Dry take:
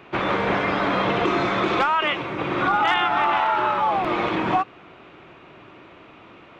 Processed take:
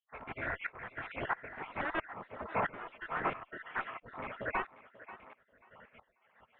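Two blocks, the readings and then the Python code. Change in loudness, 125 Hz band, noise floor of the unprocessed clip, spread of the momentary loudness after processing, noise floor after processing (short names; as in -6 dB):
-17.5 dB, -17.5 dB, -47 dBFS, 16 LU, -74 dBFS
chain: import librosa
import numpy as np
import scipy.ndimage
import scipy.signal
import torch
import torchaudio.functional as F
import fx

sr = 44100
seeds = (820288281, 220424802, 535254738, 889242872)

y = fx.spec_dropout(x, sr, seeds[0], share_pct=67)
y = fx.cheby_harmonics(y, sr, harmonics=(2, 5, 6, 8), levels_db=(-14, -18, -37, -39), full_scale_db=-10.5)
y = fx.spec_gate(y, sr, threshold_db=-10, keep='weak')
y = fx.low_shelf(y, sr, hz=160.0, db=-5.0)
y = fx.rider(y, sr, range_db=10, speed_s=0.5)
y = scipy.signal.sosfilt(scipy.signal.cheby2(4, 50, 5300.0, 'lowpass', fs=sr, output='sos'), y)
y = fx.echo_thinned(y, sr, ms=538, feedback_pct=30, hz=240.0, wet_db=-12.0)
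y = fx.tremolo_decay(y, sr, direction='swelling', hz=1.5, depth_db=18)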